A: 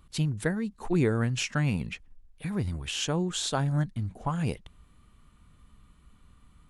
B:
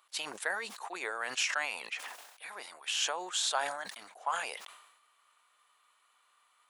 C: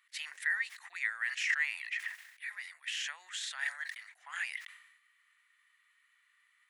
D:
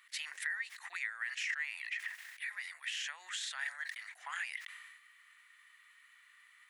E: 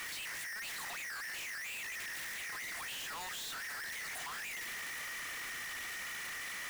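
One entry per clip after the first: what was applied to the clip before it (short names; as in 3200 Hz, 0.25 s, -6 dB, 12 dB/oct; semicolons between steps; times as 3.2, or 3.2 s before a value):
HPF 680 Hz 24 dB/oct; sustainer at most 57 dB/s
limiter -23.5 dBFS, peak gain reduction 6.5 dB; resonant high-pass 1900 Hz, resonance Q 8.6; gain -7.5 dB
compressor 2.5:1, threshold -50 dBFS, peak gain reduction 15.5 dB; gain +8 dB
infinite clipping; gain +1 dB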